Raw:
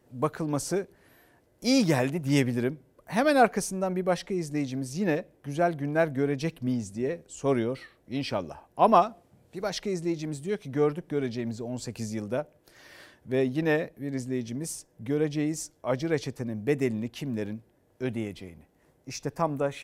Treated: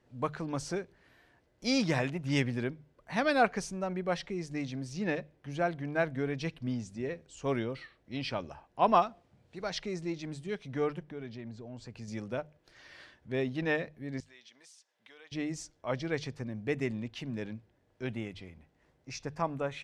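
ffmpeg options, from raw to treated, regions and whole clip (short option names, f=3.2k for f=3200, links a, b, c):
-filter_complex "[0:a]asettb=1/sr,asplit=3[a][b][c];[a]atrim=end=11.034[d];[b]atrim=start=11.03:end=12.08,asetpts=PTS-STARTPTS,afade=t=in:d=0.004:c=qsin,afade=t=out:st=1.046:d=0.004:c=qsin,acompressor=threshold=-42dB:ratio=1.5:attack=3.2:release=140:knee=1:detection=peak,highshelf=f=3.2k:g=-7.5[e];[c]atrim=start=12.076[f];[d][e]acrossfade=d=0.004:c1=hsin:c2=qsin[g];[g][f]acrossfade=d=0.004:c1=qsin:c2=hsin,asettb=1/sr,asplit=3[h][i][j];[h]atrim=end=14.204[k];[i]atrim=start=14.2:end=15.32,asetpts=PTS-STARTPTS,afade=t=in:d=0.004:c=qsin,afade=t=out:st=1.116:d=0.004:c=qsin,highpass=1k,equalizer=f=3.6k:w=2.3:g=5.5,acompressor=threshold=-55dB:ratio=2:attack=3.2:release=140:knee=1:detection=peak[l];[j]atrim=start=15.316[m];[k][l]acrossfade=d=0.004:c1=hsin:c2=qsin[n];[n][m]acrossfade=d=0.004:c1=qsin:c2=hsin,lowpass=4.7k,equalizer=f=370:w=0.37:g=-7,bandreject=f=50:t=h:w=6,bandreject=f=100:t=h:w=6,bandreject=f=150:t=h:w=6"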